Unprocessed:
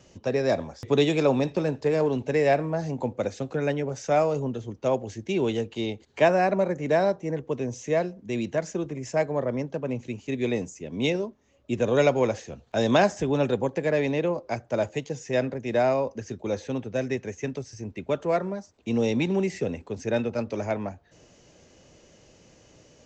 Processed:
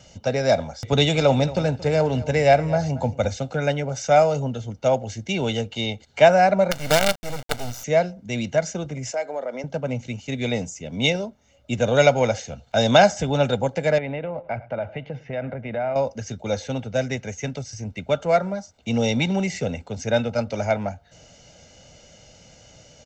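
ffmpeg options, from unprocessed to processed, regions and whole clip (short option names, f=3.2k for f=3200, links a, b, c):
-filter_complex "[0:a]asettb=1/sr,asplit=3[a][b][c];[a]atrim=end=0.924[d];[b]atrim=start=0.92:end=3.37,asetpts=PTS-STARTPTS,afade=t=in:d=0.004:c=qsin,afade=t=out:st=2.446:d=0.004:c=qsin,equalizer=f=70:t=o:w=0.91:g=14,aecho=1:1:227:0.133,atrim=end_sample=108045[e];[c]atrim=start=3.366[f];[d][e]acrossfade=d=0.004:c1=hsin:c2=qsin[g];[g][f]acrossfade=d=0.004:c1=qsin:c2=hsin,asettb=1/sr,asplit=3[h][i][j];[h]atrim=end=6.714[k];[i]atrim=start=6.71:end=7.84,asetpts=PTS-STARTPTS,afade=t=in:d=0.004:c=qsin,afade=t=out:st=1.126:d=0.004:c=qsin,equalizer=f=840:t=o:w=0.33:g=-14,acrusher=bits=4:dc=4:mix=0:aa=0.000001[l];[j]atrim=start=7.836[m];[k][l]acrossfade=d=0.004:c1=hsin:c2=qsin[n];[n][m]acrossfade=d=0.004:c1=qsin:c2=hsin,asettb=1/sr,asplit=3[o][p][q];[o]atrim=end=9.114[r];[p]atrim=start=9.11:end=9.64,asetpts=PTS-STARTPTS,afade=t=in:d=0.004:c=qsin,afade=t=out:st=0.526:d=0.004:c=qsin,highpass=f=290:w=0.5412,highpass=f=290:w=1.3066,acompressor=threshold=-30dB:ratio=3:attack=3.2:release=140:knee=1:detection=peak[s];[q]atrim=start=9.636[t];[r][s]acrossfade=d=0.004:c1=hsin:c2=qsin[u];[u][t]acrossfade=d=0.004:c1=qsin:c2=hsin,asettb=1/sr,asplit=3[v][w][x];[v]atrim=end=13.984[y];[w]atrim=start=13.98:end=15.96,asetpts=PTS-STARTPTS,afade=t=in:d=0.004:c=qsin,afade=t=out:st=1.976:d=0.004:c=qsin,lowpass=f=2.6k:w=0.5412,lowpass=f=2.6k:w=1.3066,acompressor=threshold=-28dB:ratio=6:attack=3.2:release=140:knee=1:detection=peak,aecho=1:1:105|210|315:0.0944|0.034|0.0122,atrim=end_sample=87318[z];[x]atrim=start=15.956[aa];[y][z]acrossfade=d=0.004:c1=hsin:c2=qsin[ab];[ab][aa]acrossfade=d=0.004:c1=qsin:c2=hsin,equalizer=f=4.7k:t=o:w=2:g=4.5,aecho=1:1:1.4:0.65,volume=3dB"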